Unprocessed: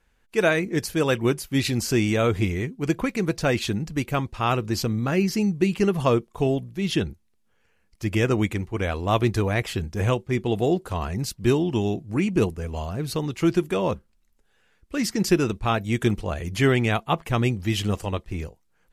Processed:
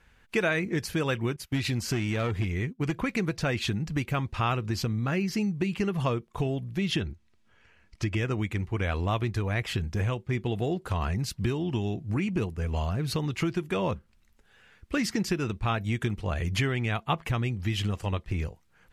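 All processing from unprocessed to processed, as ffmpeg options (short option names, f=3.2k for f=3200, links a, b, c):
-filter_complex "[0:a]asettb=1/sr,asplit=3[a][b][c];[a]atrim=end=1.364[d];[b]atrim=start=1.36:end=2.98,asetpts=PTS-STARTPTS,afade=t=in:d=0.004:c=qsin,afade=t=out:st=1.616:d=0.004:c=qsin,agate=range=-17dB:threshold=-37dB:ratio=16:release=100:detection=peak,aeval=exprs='clip(val(0),-1,0.106)':c=same[e];[c]atrim=start=2.976[f];[d][e]acrossfade=d=0.004:c1=hsin:c2=qsin[g];[g][f]acrossfade=d=0.004:c1=qsin:c2=hsin,asettb=1/sr,asplit=3[h][i][j];[h]atrim=end=7.014[k];[i]atrim=start=7.01:end=8.17,asetpts=PTS-STARTPTS,afade=t=in:d=0.004:c=qsin,afade=t=out:st=1.156:d=0.004:c=qsin,lowpass=7.8k,aecho=1:1:3.1:0.31,atrim=end_sample=51156[l];[j]atrim=start=8.166[m];[k][l]acrossfade=d=0.004:c1=hsin:c2=qsin[n];[n][m]acrossfade=d=0.004:c1=qsin:c2=hsin,equalizer=f=100:w=0.51:g=9.5,acompressor=threshold=-27dB:ratio=6,equalizer=f=2k:w=0.41:g=8.5"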